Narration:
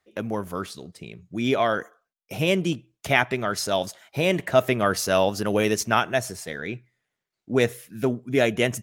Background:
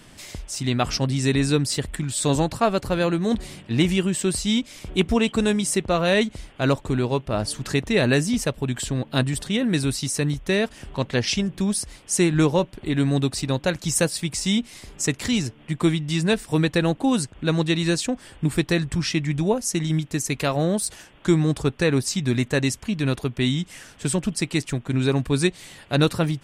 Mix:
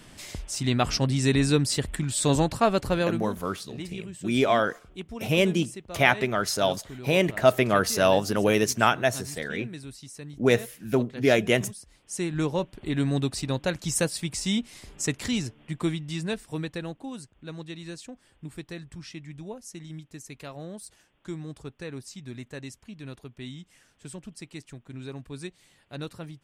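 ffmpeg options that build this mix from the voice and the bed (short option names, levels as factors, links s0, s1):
-filter_complex "[0:a]adelay=2900,volume=1[s0];[1:a]volume=3.98,afade=t=out:st=2.92:d=0.41:silence=0.149624,afade=t=in:st=11.84:d=1.06:silence=0.211349,afade=t=out:st=15.19:d=1.93:silence=0.223872[s1];[s0][s1]amix=inputs=2:normalize=0"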